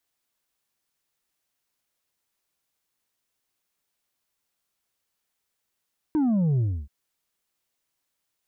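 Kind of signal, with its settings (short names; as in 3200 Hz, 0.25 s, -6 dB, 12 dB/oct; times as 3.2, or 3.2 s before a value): sub drop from 320 Hz, over 0.73 s, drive 4 dB, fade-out 0.29 s, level -20 dB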